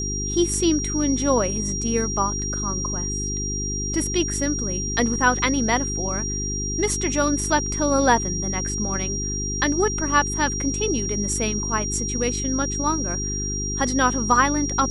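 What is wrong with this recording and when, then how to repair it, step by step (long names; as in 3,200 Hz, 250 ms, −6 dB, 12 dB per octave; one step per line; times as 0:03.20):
mains hum 50 Hz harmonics 8 −29 dBFS
whistle 5,700 Hz −27 dBFS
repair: hum removal 50 Hz, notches 8
notch filter 5,700 Hz, Q 30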